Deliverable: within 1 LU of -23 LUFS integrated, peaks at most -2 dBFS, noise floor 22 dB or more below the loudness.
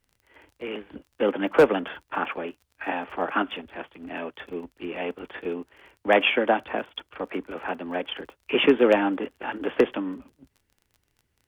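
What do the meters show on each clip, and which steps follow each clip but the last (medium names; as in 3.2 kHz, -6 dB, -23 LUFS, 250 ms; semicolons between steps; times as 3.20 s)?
tick rate 28 per s; loudness -26.0 LUFS; peak level -7.0 dBFS; loudness target -23.0 LUFS
-> de-click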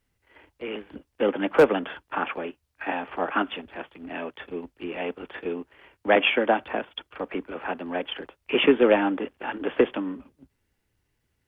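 tick rate 0.17 per s; loudness -26.0 LUFS; peak level -6.5 dBFS; loudness target -23.0 LUFS
-> trim +3 dB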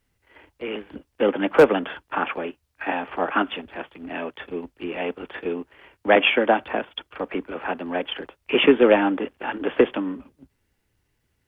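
loudness -23.0 LUFS; peak level -3.5 dBFS; noise floor -72 dBFS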